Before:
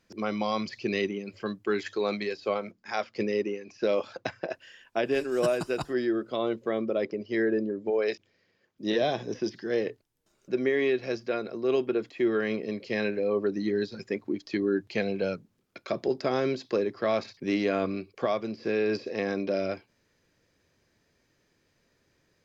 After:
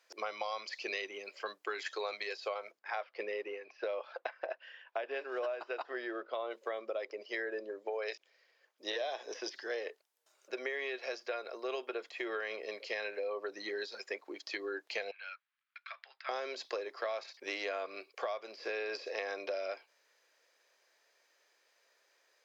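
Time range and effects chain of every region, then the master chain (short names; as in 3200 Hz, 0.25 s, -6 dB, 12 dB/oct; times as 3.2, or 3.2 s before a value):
2.79–6.51 block floating point 7-bit + Gaussian blur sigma 2.4 samples
15.11–16.29 HPF 1400 Hz 24 dB/oct + air absorption 380 m
whole clip: HPF 540 Hz 24 dB/oct; compressor, threshold -36 dBFS; gain +1.5 dB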